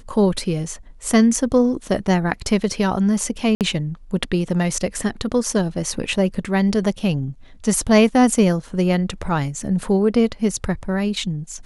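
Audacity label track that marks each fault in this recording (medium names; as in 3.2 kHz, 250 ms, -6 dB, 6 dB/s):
3.550000	3.610000	dropout 58 ms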